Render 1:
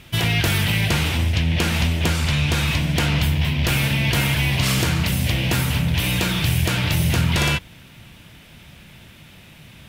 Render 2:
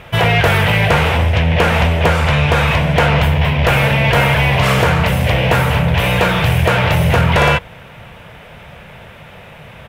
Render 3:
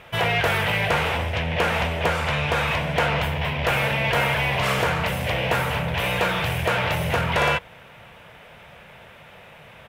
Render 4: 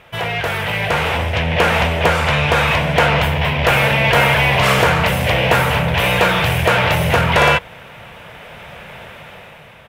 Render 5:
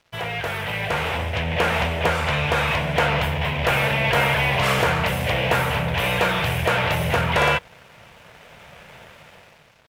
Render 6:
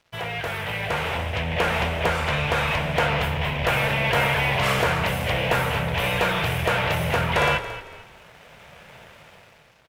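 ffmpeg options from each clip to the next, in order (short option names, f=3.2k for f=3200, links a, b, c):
-af "firequalizer=gain_entry='entry(160,0);entry(310,-6);entry(460,11);entry(4400,-9)':delay=0.05:min_phase=1,acontrast=63"
-af "lowshelf=f=230:g=-8,volume=-7dB"
-af "dynaudnorm=f=290:g=7:m=12dB"
-af "aeval=exprs='sgn(val(0))*max(abs(val(0))-0.00708,0)':c=same,volume=-6dB"
-filter_complex "[0:a]asplit=4[a][b][c][d];[b]adelay=225,afreqshift=-31,volume=-13dB[e];[c]adelay=450,afreqshift=-62,volume=-22.9dB[f];[d]adelay=675,afreqshift=-93,volume=-32.8dB[g];[a][e][f][g]amix=inputs=4:normalize=0,volume=-2dB"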